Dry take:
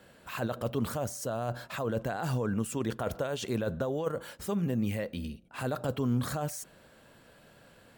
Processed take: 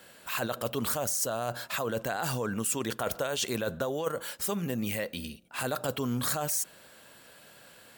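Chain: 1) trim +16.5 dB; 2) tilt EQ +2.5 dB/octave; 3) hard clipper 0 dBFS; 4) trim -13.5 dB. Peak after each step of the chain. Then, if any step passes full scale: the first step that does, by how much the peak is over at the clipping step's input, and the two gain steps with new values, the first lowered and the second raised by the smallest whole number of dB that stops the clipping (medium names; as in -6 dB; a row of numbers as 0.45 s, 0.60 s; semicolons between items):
-3.0 dBFS, -2.0 dBFS, -2.0 dBFS, -15.5 dBFS; nothing clips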